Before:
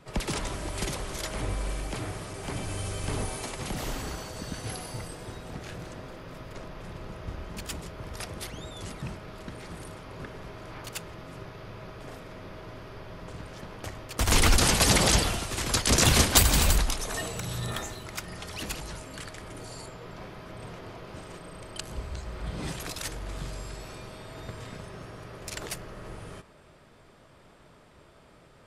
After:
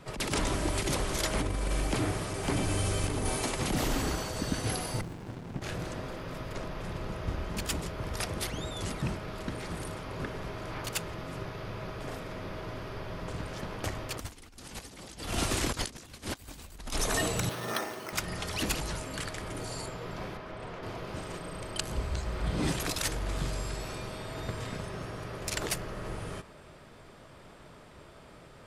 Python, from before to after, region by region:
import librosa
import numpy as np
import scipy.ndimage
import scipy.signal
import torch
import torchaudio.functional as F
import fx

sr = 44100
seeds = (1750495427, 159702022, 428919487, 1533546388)

y = fx.chain(x, sr, fx.highpass(hz=98.0, slope=24),
    fx.high_shelf(hz=8100.0, db=-9.0),
    fx.running_max(window=65), at=(5.01, 5.62))
y = fx.chain(y, sr, fx.bandpass_edges(low_hz=270.0, high_hz=4100.0),
    fx.resample_bad(factor=6, down='filtered', up='hold'), at=(17.49, 18.13))
y = fx.chain(y, sr, fx.lowpass(hz=2600.0, slope=6),
    fx.peak_eq(hz=110.0, db=-7.0, octaves=2.7),
    fx.doppler_dist(depth_ms=0.12), at=(20.37, 20.83))
y = fx.dynamic_eq(y, sr, hz=290.0, q=1.9, threshold_db=-44.0, ratio=4.0, max_db=5)
y = fx.over_compress(y, sr, threshold_db=-31.0, ratio=-0.5)